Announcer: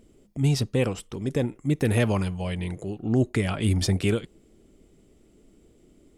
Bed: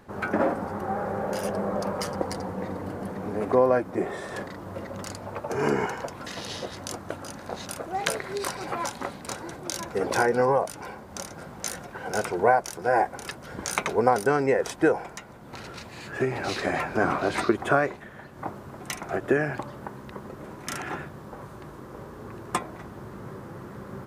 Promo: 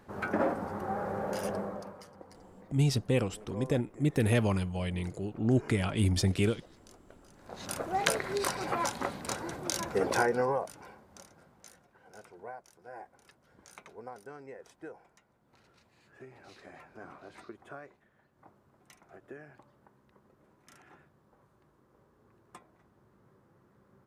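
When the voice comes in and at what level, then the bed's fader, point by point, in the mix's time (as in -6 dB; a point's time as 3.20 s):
2.35 s, -4.0 dB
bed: 1.55 s -5 dB
2.07 s -22.5 dB
7.30 s -22.5 dB
7.72 s -1 dB
9.94 s -1 dB
11.87 s -24.5 dB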